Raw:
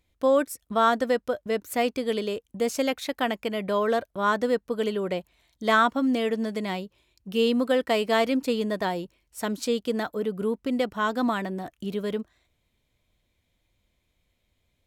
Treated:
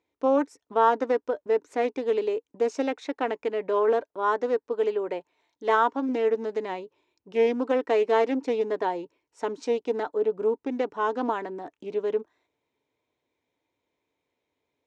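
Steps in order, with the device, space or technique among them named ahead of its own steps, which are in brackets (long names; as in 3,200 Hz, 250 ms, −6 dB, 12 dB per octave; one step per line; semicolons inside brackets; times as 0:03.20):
0:04.02–0:06.09: low-shelf EQ 250 Hz −5.5 dB
full-range speaker at full volume (highs frequency-modulated by the lows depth 0.23 ms; loudspeaker in its box 190–6,300 Hz, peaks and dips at 200 Hz −9 dB, 290 Hz +7 dB, 430 Hz +10 dB, 910 Hz +10 dB, 3,200 Hz −5 dB, 4,500 Hz −6 dB)
level −5 dB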